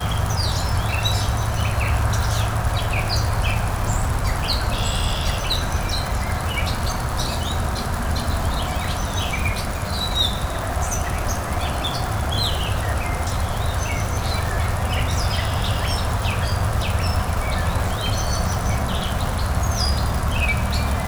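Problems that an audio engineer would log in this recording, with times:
crackle 370 per s -24 dBFS

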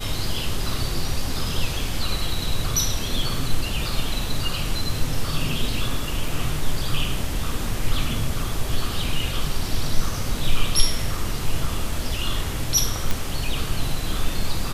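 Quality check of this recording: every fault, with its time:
6.28 s: dropout 2.3 ms
13.11 s: pop

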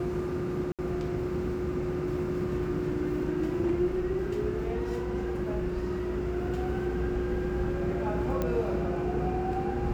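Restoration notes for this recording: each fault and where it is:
0.72–0.79 s: dropout 67 ms
8.42 s: pop -17 dBFS

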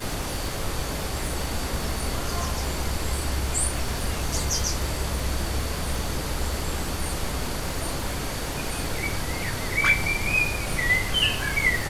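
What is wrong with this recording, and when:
crackle 72 per s -30 dBFS

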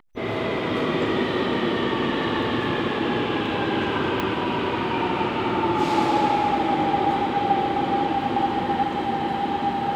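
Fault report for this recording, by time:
4.20 s: pop -11 dBFS

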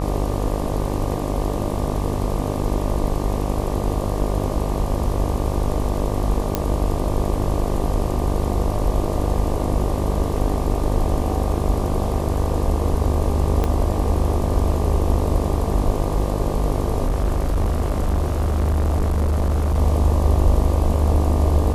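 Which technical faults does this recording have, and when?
buzz 50 Hz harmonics 24 -24 dBFS
6.55 s: pop -5 dBFS
13.64 s: pop -9 dBFS
17.05–19.79 s: clipped -15.5 dBFS

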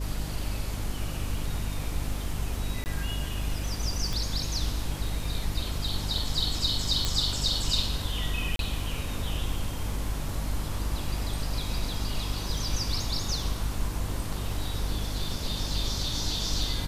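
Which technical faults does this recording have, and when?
crackle 11 per s -36 dBFS
hum 50 Hz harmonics 6 -34 dBFS
2.84–2.86 s: dropout 19 ms
4.13 s: pop
7.05 s: pop -12 dBFS
8.56–8.59 s: dropout 32 ms

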